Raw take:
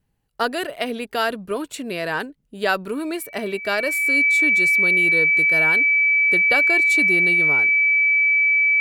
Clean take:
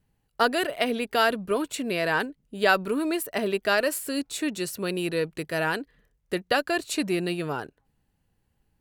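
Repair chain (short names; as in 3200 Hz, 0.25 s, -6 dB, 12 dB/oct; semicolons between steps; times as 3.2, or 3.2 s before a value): notch 2300 Hz, Q 30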